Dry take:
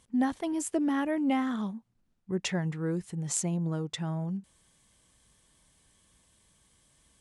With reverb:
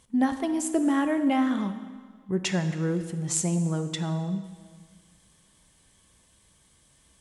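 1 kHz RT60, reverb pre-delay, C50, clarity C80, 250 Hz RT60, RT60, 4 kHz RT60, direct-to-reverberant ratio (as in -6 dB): 1.7 s, 6 ms, 10.0 dB, 11.0 dB, 1.7 s, 1.7 s, 1.6 s, 8.5 dB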